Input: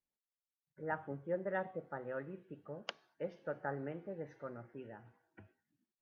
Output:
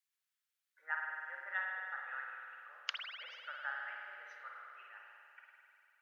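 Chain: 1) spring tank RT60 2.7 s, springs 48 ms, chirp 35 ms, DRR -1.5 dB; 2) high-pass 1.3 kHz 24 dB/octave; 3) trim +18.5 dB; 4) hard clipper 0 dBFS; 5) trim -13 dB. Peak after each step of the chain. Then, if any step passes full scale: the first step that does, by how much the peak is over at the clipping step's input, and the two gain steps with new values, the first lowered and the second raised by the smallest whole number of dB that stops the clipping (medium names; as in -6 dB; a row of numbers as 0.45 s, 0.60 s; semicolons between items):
-21.5 dBFS, -23.5 dBFS, -5.0 dBFS, -5.0 dBFS, -18.0 dBFS; nothing clips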